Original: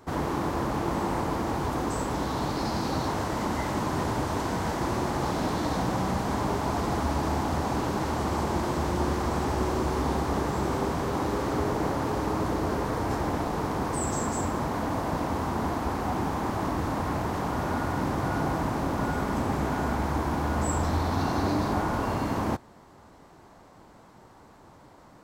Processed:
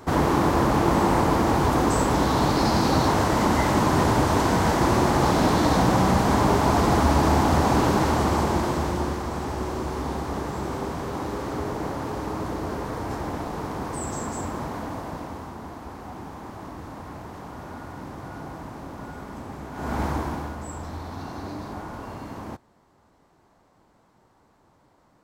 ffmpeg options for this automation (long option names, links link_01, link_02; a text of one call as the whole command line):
ffmpeg -i in.wav -af "volume=20dB,afade=type=out:start_time=7.89:duration=1.34:silence=0.316228,afade=type=out:start_time=14.63:duration=0.95:silence=0.421697,afade=type=in:start_time=19.73:duration=0.29:silence=0.251189,afade=type=out:start_time=20.02:duration=0.55:silence=0.281838" out.wav